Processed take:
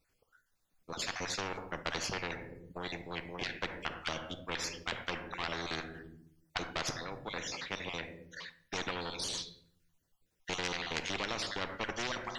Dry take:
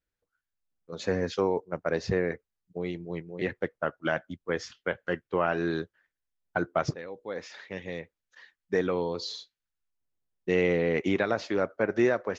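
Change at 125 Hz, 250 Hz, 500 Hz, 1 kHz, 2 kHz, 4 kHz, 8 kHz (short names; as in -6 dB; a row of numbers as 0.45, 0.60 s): -10.5 dB, -13.0 dB, -15.0 dB, -5.0 dB, -4.5 dB, +4.5 dB, n/a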